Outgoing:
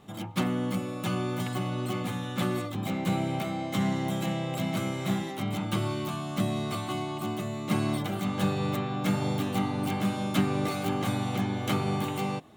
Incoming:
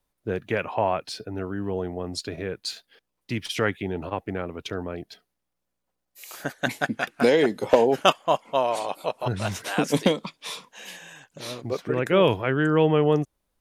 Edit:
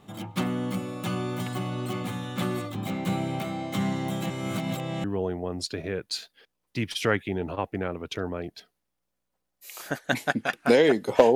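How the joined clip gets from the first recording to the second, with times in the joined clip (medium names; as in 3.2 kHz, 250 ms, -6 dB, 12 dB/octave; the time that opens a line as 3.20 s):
outgoing
4.30–5.04 s: reverse
5.04 s: go over to incoming from 1.58 s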